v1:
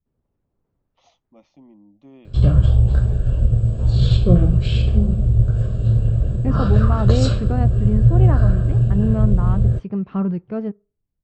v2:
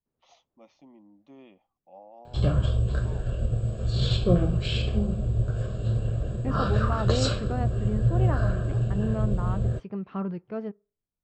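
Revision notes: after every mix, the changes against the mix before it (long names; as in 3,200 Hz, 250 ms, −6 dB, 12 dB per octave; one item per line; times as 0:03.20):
first voice: entry −0.75 s
second voice −3.5 dB
master: add low-shelf EQ 230 Hz −12 dB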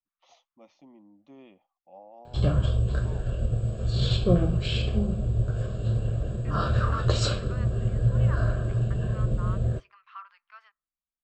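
second voice: add elliptic high-pass filter 1,100 Hz, stop band 70 dB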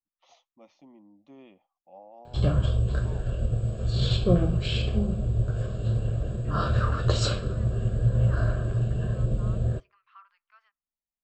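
second voice −9.0 dB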